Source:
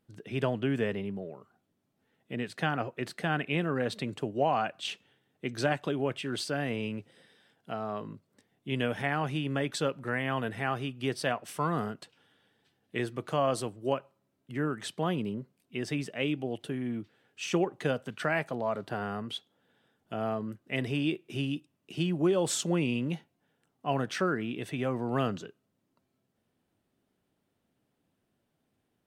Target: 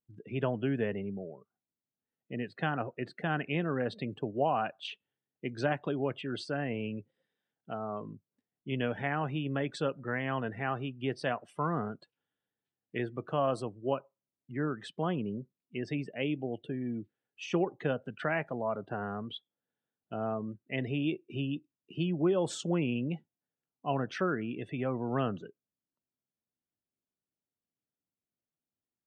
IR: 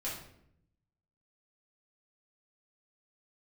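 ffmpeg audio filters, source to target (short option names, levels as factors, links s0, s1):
-af "afftdn=nr=20:nf=-44,aemphasis=mode=reproduction:type=50fm,volume=0.794"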